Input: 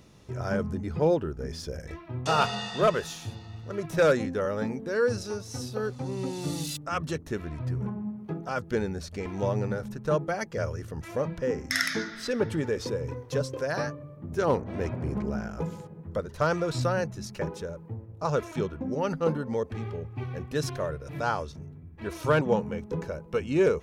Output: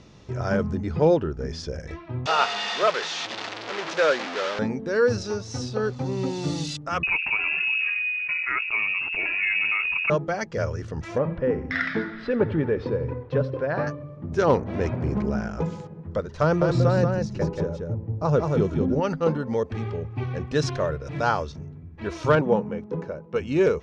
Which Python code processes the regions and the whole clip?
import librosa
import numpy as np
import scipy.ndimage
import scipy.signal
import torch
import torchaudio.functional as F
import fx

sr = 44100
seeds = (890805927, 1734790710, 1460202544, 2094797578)

y = fx.chain(x, sr, fx.delta_mod(bps=64000, step_db=-24.0),
    fx.bandpass_edges(low_hz=290.0, high_hz=4600.0),
    fx.low_shelf(hz=410.0, db=-11.0), at=(2.26, 4.59))
y = fx.chain(y, sr, fx.freq_invert(carrier_hz=2700),
    fx.env_flatten(amount_pct=70), at=(7.03, 10.1))
y = fx.chain(y, sr, fx.air_absorb(metres=450.0),
    fx.echo_feedback(ms=85, feedback_pct=48, wet_db=-17.5), at=(11.18, 13.87))
y = fx.chain(y, sr, fx.tilt_shelf(db=5.5, hz=720.0),
    fx.echo_single(ms=183, db=-4.0), at=(16.43, 19.0))
y = fx.chain(y, sr, fx.highpass(hz=130.0, slope=12),
    fx.high_shelf(hz=2500.0, db=-12.0), at=(22.35, 23.36))
y = scipy.signal.sosfilt(scipy.signal.butter(4, 6500.0, 'lowpass', fs=sr, output='sos'), y)
y = fx.rider(y, sr, range_db=3, speed_s=2.0)
y = y * 10.0 ** (3.0 / 20.0)